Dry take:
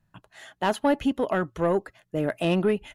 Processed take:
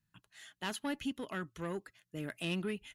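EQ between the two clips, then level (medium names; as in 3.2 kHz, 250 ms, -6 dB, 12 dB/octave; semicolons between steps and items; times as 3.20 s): amplifier tone stack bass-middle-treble 6-0-2; bass shelf 67 Hz -7.5 dB; bass shelf 180 Hz -10.5 dB; +11.0 dB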